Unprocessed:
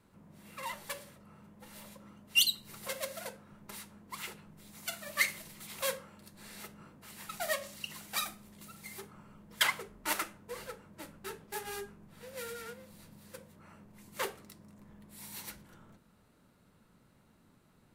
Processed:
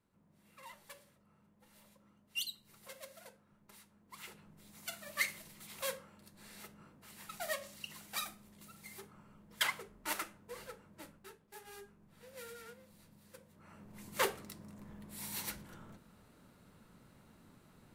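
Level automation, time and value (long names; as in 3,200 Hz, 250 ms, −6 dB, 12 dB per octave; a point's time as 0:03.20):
0:03.93 −13 dB
0:04.45 −5 dB
0:11.07 −5 dB
0:11.39 −15 dB
0:12.14 −7.5 dB
0:13.45 −7.5 dB
0:13.97 +3.5 dB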